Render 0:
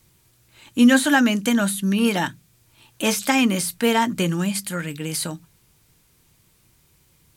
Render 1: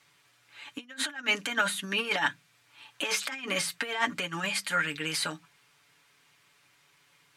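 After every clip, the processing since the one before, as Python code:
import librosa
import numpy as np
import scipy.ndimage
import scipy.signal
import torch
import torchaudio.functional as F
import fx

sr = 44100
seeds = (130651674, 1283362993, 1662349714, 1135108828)

y = x + 0.68 * np.pad(x, (int(7.0 * sr / 1000.0), 0))[:len(x)]
y = fx.over_compress(y, sr, threshold_db=-22.0, ratio=-0.5)
y = fx.bandpass_q(y, sr, hz=1800.0, q=0.85)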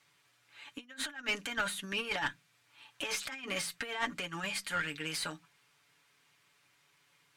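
y = fx.diode_clip(x, sr, knee_db=-22.5)
y = F.gain(torch.from_numpy(y), -5.0).numpy()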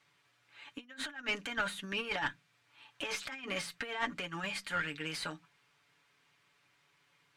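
y = fx.high_shelf(x, sr, hz=6600.0, db=-11.0)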